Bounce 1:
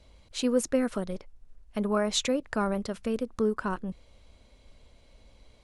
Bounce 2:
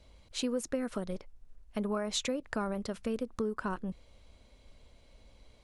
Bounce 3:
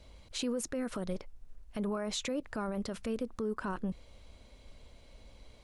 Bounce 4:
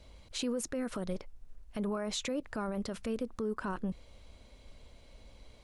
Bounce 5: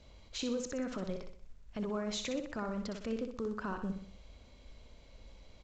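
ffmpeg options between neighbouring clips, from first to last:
-af "acompressor=threshold=-27dB:ratio=6,volume=-2dB"
-af "alimiter=level_in=6dB:limit=-24dB:level=0:latency=1:release=26,volume=-6dB,volume=3.5dB"
-af anull
-af "aeval=exprs='val(0)+0.000562*(sin(2*PI*50*n/s)+sin(2*PI*2*50*n/s)/2+sin(2*PI*3*50*n/s)/3+sin(2*PI*4*50*n/s)/4+sin(2*PI*5*50*n/s)/5)':c=same,aecho=1:1:62|124|186|248|310:0.447|0.205|0.0945|0.0435|0.02,volume=-2.5dB" -ar 16000 -c:a pcm_mulaw

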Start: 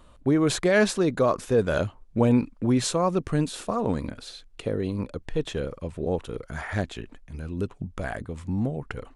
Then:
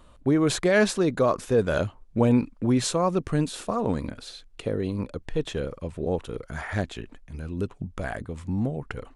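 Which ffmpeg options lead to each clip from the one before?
-af anull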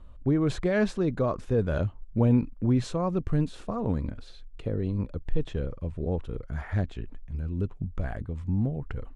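-af "aemphasis=mode=reproduction:type=bsi,volume=-7dB"

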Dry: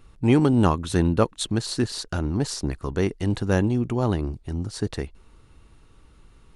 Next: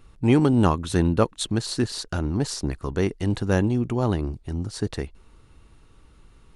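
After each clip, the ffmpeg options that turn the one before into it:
-af anull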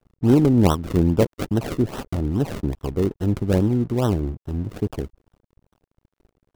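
-filter_complex "[0:a]acrossover=split=770[a][b];[b]acrusher=samples=38:mix=1:aa=0.000001:lfo=1:lforange=38:lforate=2.4[c];[a][c]amix=inputs=2:normalize=0,aeval=exprs='sgn(val(0))*max(abs(val(0))-0.00447,0)':c=same,volume=3dB"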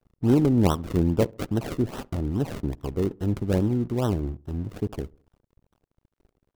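-filter_complex "[0:a]asplit=2[a][b];[b]adelay=68,lowpass=f=1.2k:p=1,volume=-23.5dB,asplit=2[c][d];[d]adelay=68,lowpass=f=1.2k:p=1,volume=0.48,asplit=2[e][f];[f]adelay=68,lowpass=f=1.2k:p=1,volume=0.48[g];[a][c][e][g]amix=inputs=4:normalize=0,volume=-4dB"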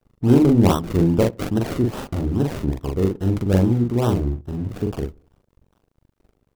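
-filter_complex "[0:a]asplit=2[a][b];[b]adelay=42,volume=-2.5dB[c];[a][c]amix=inputs=2:normalize=0,volume=3.5dB"

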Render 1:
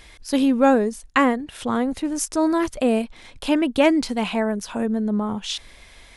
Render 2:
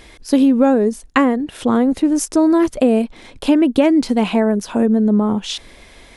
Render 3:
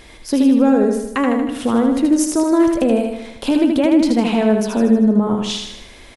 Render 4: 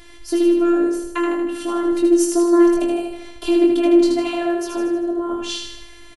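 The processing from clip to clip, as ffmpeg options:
-af "equalizer=f=320:w=0.59:g=8.5,acompressor=threshold=-12dB:ratio=6,volume=2.5dB"
-filter_complex "[0:a]alimiter=limit=-8dB:level=0:latency=1:release=139,asplit=2[a][b];[b]aecho=0:1:78|156|234|312|390|468|546:0.596|0.316|0.167|0.0887|0.047|0.0249|0.0132[c];[a][c]amix=inputs=2:normalize=0"
-filter_complex "[0:a]afftfilt=real='hypot(re,im)*cos(PI*b)':imag='0':win_size=512:overlap=0.75,asplit=2[a][b];[b]adelay=21,volume=-4.5dB[c];[a][c]amix=inputs=2:normalize=0"

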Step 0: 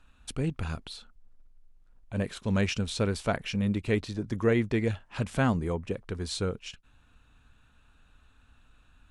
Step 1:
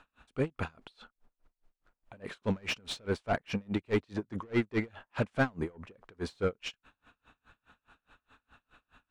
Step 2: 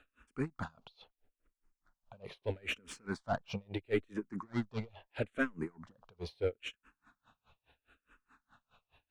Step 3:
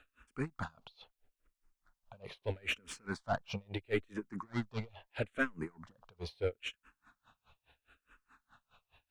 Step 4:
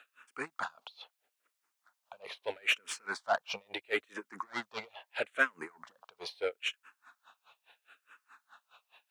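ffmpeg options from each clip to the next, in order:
-filter_complex "[0:a]asplit=2[a][b];[b]highpass=f=720:p=1,volume=23dB,asoftclip=type=tanh:threshold=-11.5dB[c];[a][c]amix=inputs=2:normalize=0,lowpass=f=1.3k:p=1,volume=-6dB,aeval=exprs='val(0)*pow(10,-33*(0.5-0.5*cos(2*PI*4.8*n/s))/20)':c=same,volume=-3dB"
-filter_complex "[0:a]asplit=2[a][b];[b]afreqshift=-0.76[c];[a][c]amix=inputs=2:normalize=1,volume=-2dB"
-af "equalizer=f=290:t=o:w=2.2:g=-4.5,volume=2dB"
-af "highpass=640,volume=7dB"

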